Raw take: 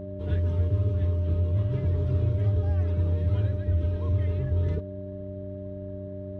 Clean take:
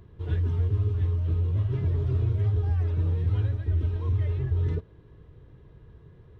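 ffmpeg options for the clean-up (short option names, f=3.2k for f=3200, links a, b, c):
-af "bandreject=f=95.7:t=h:w=4,bandreject=f=191.4:t=h:w=4,bandreject=f=287.1:t=h:w=4,bandreject=f=382.8:t=h:w=4,bandreject=f=600:w=30"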